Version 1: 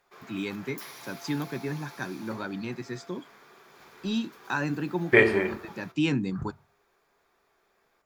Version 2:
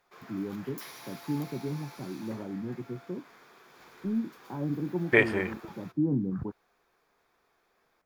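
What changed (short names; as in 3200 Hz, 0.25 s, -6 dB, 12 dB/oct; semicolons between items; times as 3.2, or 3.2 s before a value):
first voice: add Gaussian blur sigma 12 samples; reverb: off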